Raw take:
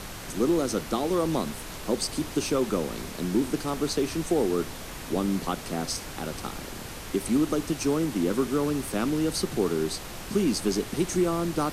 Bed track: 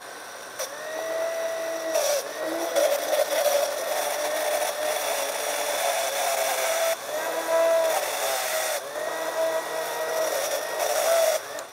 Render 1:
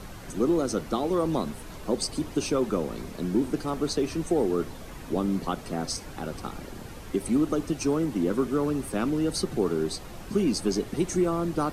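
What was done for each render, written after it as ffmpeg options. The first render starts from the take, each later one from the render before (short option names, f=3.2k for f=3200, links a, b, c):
-af "afftdn=nr=9:nf=-39"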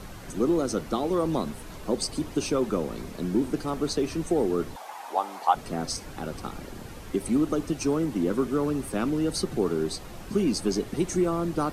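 -filter_complex "[0:a]asettb=1/sr,asplit=3[a][b][c];[a]atrim=end=4.764[d];[b]atrim=start=4.76:end=5.55,asetpts=PTS-STARTPTS,afade=t=in:d=0.004:c=qsin,afade=t=out:st=0.786:d=0.004:c=qsin,highpass=f=820:t=q:w=6.1[e];[c]atrim=start=5.546[f];[d][e]acrossfade=d=0.004:c1=hsin:c2=qsin[g];[g][f]acrossfade=d=0.004:c1=qsin:c2=hsin"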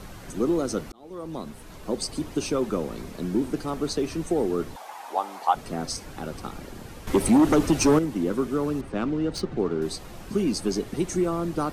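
-filter_complex "[0:a]asettb=1/sr,asplit=3[a][b][c];[a]atrim=end=7.074[d];[b]atrim=start=7.07:end=7.99,asetpts=PTS-STARTPTS,afade=t=in:d=0.004:c=qsin,afade=t=out:st=0.916:d=0.004:c=qsin,aeval=exprs='0.224*sin(PI/2*2*val(0)/0.224)':c=same[e];[c]atrim=start=7.986[f];[d][e]acrossfade=d=0.004:c1=hsin:c2=qsin[g];[g][f]acrossfade=d=0.004:c1=qsin:c2=hsin,asettb=1/sr,asplit=3[h][i][j];[h]atrim=end=8.814[k];[i]atrim=start=8.81:end=9.82,asetpts=PTS-STARTPTS,afade=t=in:d=0.004:c=qsin,afade=t=out:st=1.006:d=0.004:c=qsin,adynamicsmooth=sensitivity=4:basefreq=3k[l];[j]atrim=start=9.816[m];[k][l]acrossfade=d=0.004:c1=hsin:c2=qsin[n];[n][m]acrossfade=d=0.004:c1=qsin:c2=hsin,asplit=2[o][p];[o]atrim=end=0.92,asetpts=PTS-STARTPTS,afade=t=out:st=0.916:d=0.004:c=hsin[q];[p]atrim=start=0.92,asetpts=PTS-STARTPTS,afade=t=in:d=1.53:c=qsin[r];[q][r]concat=n=2:v=0:a=1"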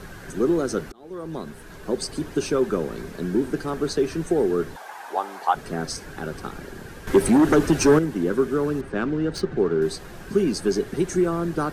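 -af "equalizer=f=160:t=o:w=0.33:g=4,equalizer=f=400:t=o:w=0.33:g=7,equalizer=f=1.6k:t=o:w=0.33:g=11"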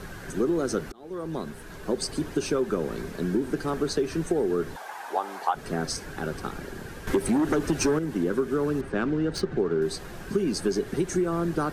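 -af "acompressor=threshold=-21dB:ratio=6"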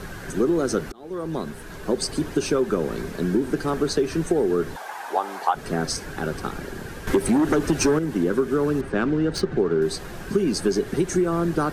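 -af "volume=4dB"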